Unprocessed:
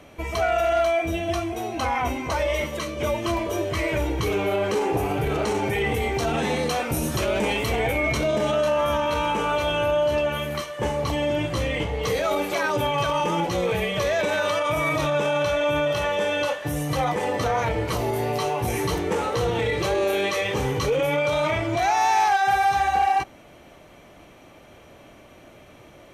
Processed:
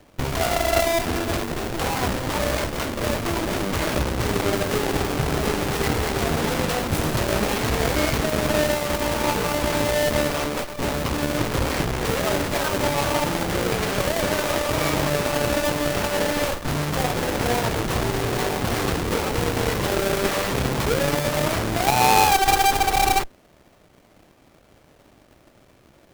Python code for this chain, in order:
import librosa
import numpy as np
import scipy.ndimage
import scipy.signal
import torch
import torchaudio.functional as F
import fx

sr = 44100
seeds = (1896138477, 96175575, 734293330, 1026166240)

y = fx.halfwave_hold(x, sr)
y = fx.cheby_harmonics(y, sr, harmonics=(3, 8), levels_db=(-12, -11), full_scale_db=-11.0)